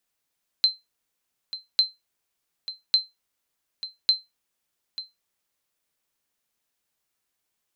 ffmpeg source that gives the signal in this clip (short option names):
-f lavfi -i "aevalsrc='0.299*(sin(2*PI*4100*mod(t,1.15))*exp(-6.91*mod(t,1.15)/0.19)+0.188*sin(2*PI*4100*max(mod(t,1.15)-0.89,0))*exp(-6.91*max(mod(t,1.15)-0.89,0)/0.19))':d=4.6:s=44100"